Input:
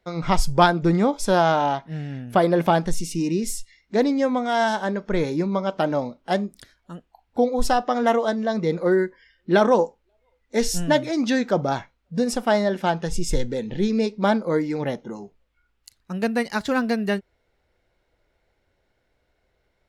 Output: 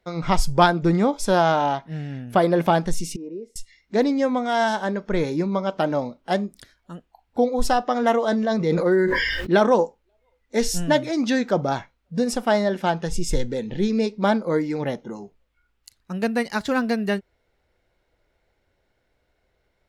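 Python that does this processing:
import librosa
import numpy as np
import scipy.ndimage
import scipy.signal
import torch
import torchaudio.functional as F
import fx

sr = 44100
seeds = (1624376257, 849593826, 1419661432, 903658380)

y = fx.bandpass_q(x, sr, hz=490.0, q=4.0, at=(3.16, 3.56))
y = fx.sustainer(y, sr, db_per_s=24.0, at=(8.2, 9.53))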